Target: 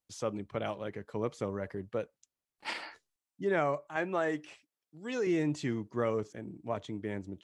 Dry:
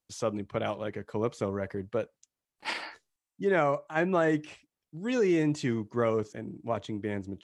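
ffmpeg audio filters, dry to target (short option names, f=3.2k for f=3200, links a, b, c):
-filter_complex "[0:a]asettb=1/sr,asplit=3[a][b][c];[a]atrim=end=3.964[d];[b]atrim=start=3.96:end=5.27,asetpts=PTS-STARTPTS,afade=t=in:d=0.004:c=qsin,afade=t=out:st=1.306:d=0.004:c=qsin,highpass=f=360:p=1[e];[c]atrim=start=5.266[f];[d][e]acrossfade=d=0.004:c1=hsin:c2=qsin[g];[g][f]acrossfade=d=0.004:c1=qsin:c2=hsin,volume=-4dB"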